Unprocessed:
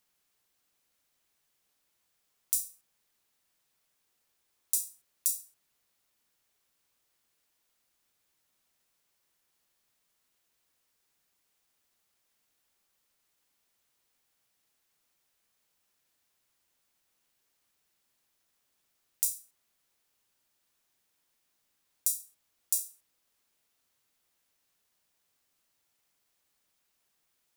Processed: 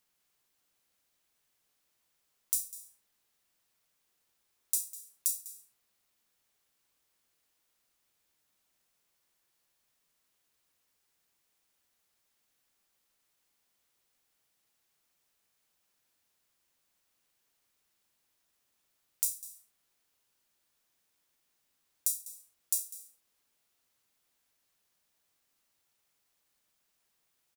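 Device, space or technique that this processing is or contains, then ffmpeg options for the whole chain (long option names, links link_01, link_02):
ducked delay: -filter_complex "[0:a]asplit=3[link_01][link_02][link_03];[link_02]adelay=199,volume=-6.5dB[link_04];[link_03]apad=whole_len=1224184[link_05];[link_04][link_05]sidechaincompress=threshold=-47dB:ratio=8:attack=16:release=204[link_06];[link_01][link_06]amix=inputs=2:normalize=0,volume=-1.5dB"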